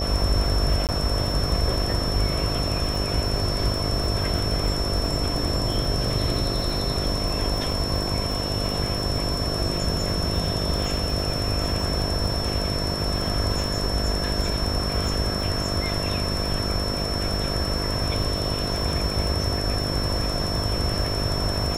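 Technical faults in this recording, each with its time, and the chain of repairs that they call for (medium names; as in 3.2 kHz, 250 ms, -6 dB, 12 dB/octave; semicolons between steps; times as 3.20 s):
buzz 50 Hz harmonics 14 -30 dBFS
crackle 41 per s -29 dBFS
whine 5.4 kHz -29 dBFS
0.87–0.89 s: dropout 18 ms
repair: de-click; de-hum 50 Hz, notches 14; band-stop 5.4 kHz, Q 30; interpolate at 0.87 s, 18 ms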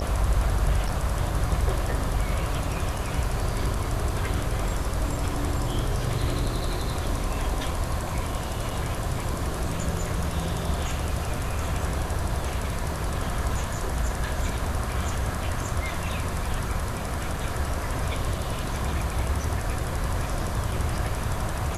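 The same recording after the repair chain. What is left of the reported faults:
nothing left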